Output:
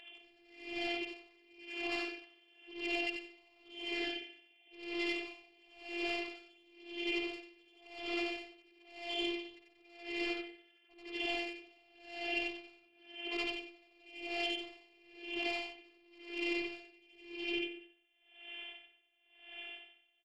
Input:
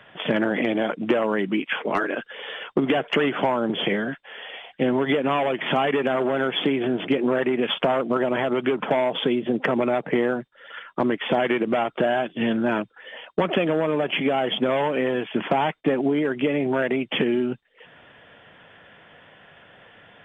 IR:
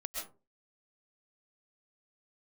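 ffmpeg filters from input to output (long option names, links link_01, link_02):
-filter_complex "[0:a]afftfilt=real='re':imag='-im':win_size=8192:overlap=0.75,asplit=2[link_01][link_02];[link_02]aecho=0:1:54|292|434:0.316|0.251|0.141[link_03];[link_01][link_03]amix=inputs=2:normalize=0,asoftclip=type=tanh:threshold=-30dB,bandreject=frequency=50:width_type=h:width=6,bandreject=frequency=100:width_type=h:width=6,bandreject=frequency=150:width_type=h:width=6,bandreject=frequency=200:width_type=h:width=6,bandreject=frequency=250:width_type=h:width=6,bandreject=frequency=300:width_type=h:width=6,bandreject=frequency=350:width_type=h:width=6,bandreject=frequency=400:width_type=h:width=6,bandreject=frequency=450:width_type=h:width=6,acrossover=split=2900[link_04][link_05];[link_05]acompressor=threshold=-51dB:ratio=4:attack=1:release=60[link_06];[link_04][link_06]amix=inputs=2:normalize=0,aexciter=amount=15.6:drive=3.6:freq=2600,bass=frequency=250:gain=-6,treble=frequency=4000:gain=-8,afftfilt=real='hypot(re,im)*cos(PI*b)':imag='0':win_size=512:overlap=0.75,aemphasis=mode=reproduction:type=50fm,acrossover=split=260|1200|3100[link_07][link_08][link_09][link_10];[link_07]acompressor=threshold=-49dB:ratio=4[link_11];[link_08]acompressor=threshold=-45dB:ratio=4[link_12];[link_09]acompressor=threshold=-42dB:ratio=4[link_13];[link_10]acompressor=threshold=-45dB:ratio=4[link_14];[link_11][link_12][link_13][link_14]amix=inputs=4:normalize=0,aecho=1:1:2.5:0.97,aeval=exprs='val(0)*pow(10,-31*(0.5-0.5*cos(2*PI*0.96*n/s))/20)':channel_layout=same,volume=1dB"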